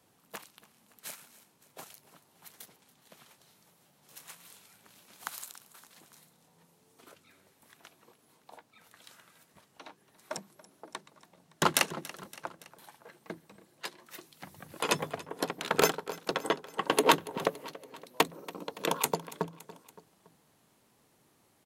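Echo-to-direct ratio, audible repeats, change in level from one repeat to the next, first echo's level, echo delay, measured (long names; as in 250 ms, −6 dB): −17.0 dB, 3, −4.5 dB, −18.5 dB, 283 ms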